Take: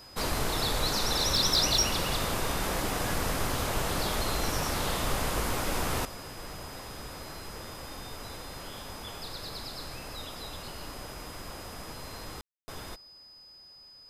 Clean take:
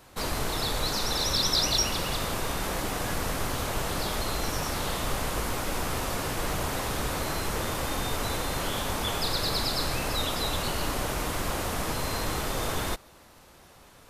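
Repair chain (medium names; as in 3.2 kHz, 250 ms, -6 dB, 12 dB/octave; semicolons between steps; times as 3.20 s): clip repair -17 dBFS; band-stop 5 kHz, Q 30; room tone fill 12.41–12.68 s; gain correction +12 dB, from 6.05 s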